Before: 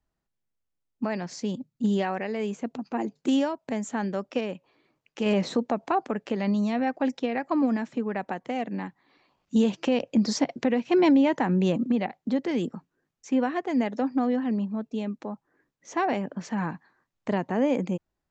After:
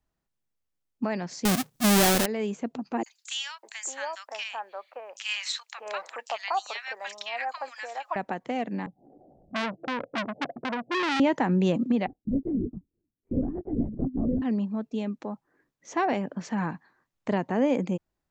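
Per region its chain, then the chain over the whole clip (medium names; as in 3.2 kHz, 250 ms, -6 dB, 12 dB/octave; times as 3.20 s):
1.45–2.26 s: square wave that keeps the level + treble shelf 3.9 kHz +11 dB + transient shaper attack -3 dB, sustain +7 dB
3.03–8.16 s: high-pass 720 Hz 24 dB/octave + treble shelf 2.5 kHz +11.5 dB + three bands offset in time highs, mids, lows 30/600 ms, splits 1.3/6 kHz
8.86–11.20 s: steep low-pass 780 Hz 96 dB/octave + upward compressor, threshold -40 dBFS + transformer saturation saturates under 2.3 kHz
12.07–14.42 s: Butterworth band-pass 240 Hz, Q 1.1 + LPC vocoder at 8 kHz whisper
whole clip: none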